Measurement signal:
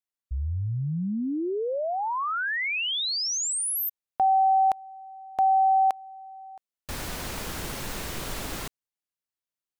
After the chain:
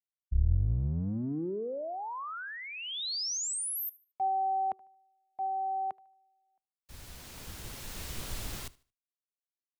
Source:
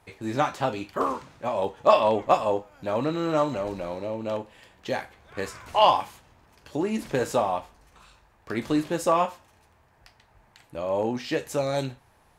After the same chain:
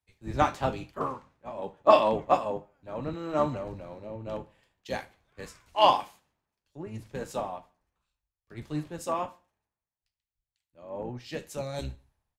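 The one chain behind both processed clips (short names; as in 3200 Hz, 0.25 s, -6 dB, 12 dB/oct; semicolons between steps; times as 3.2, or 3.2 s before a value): octaver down 1 oct, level -2 dB; on a send: feedback echo 75 ms, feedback 42%, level -20 dB; on the sum: vocal rider within 4 dB 2 s; three-band expander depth 100%; gain -9 dB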